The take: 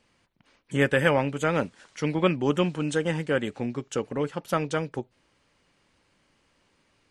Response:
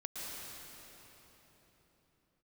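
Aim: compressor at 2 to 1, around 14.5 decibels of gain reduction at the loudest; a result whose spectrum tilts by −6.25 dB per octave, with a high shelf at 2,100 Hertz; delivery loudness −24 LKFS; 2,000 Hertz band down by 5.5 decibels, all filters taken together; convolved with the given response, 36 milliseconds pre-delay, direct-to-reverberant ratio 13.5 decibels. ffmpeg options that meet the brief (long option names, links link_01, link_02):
-filter_complex "[0:a]equalizer=frequency=2000:width_type=o:gain=-5,highshelf=frequency=2100:gain=-4,acompressor=threshold=-46dB:ratio=2,asplit=2[link_01][link_02];[1:a]atrim=start_sample=2205,adelay=36[link_03];[link_02][link_03]afir=irnorm=-1:irlink=0,volume=-14.5dB[link_04];[link_01][link_04]amix=inputs=2:normalize=0,volume=16.5dB"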